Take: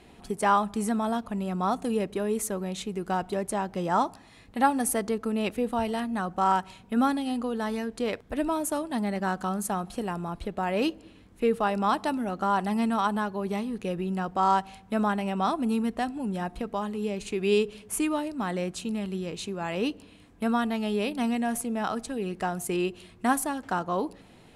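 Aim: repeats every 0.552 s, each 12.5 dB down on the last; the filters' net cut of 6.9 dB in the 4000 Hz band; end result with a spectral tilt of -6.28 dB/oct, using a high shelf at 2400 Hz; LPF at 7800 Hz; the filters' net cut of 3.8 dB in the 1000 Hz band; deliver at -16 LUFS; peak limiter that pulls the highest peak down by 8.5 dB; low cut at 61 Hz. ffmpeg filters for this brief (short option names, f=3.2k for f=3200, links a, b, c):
-af "highpass=61,lowpass=7.8k,equalizer=f=1k:t=o:g=-4,highshelf=f=2.4k:g=-4,equalizer=f=4k:t=o:g=-5.5,alimiter=limit=-21.5dB:level=0:latency=1,aecho=1:1:552|1104|1656:0.237|0.0569|0.0137,volume=15.5dB"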